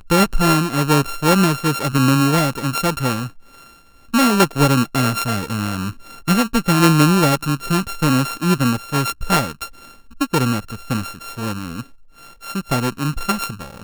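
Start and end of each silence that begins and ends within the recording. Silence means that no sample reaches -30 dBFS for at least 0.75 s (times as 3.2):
3.28–4.14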